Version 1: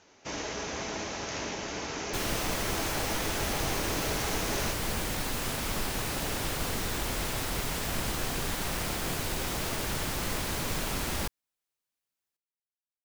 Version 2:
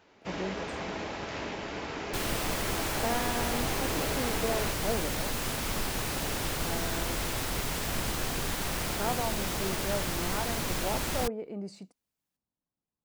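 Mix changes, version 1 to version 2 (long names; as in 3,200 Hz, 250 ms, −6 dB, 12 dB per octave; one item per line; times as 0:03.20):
speech: unmuted
first sound: remove low-pass with resonance 6,300 Hz, resonance Q 5.2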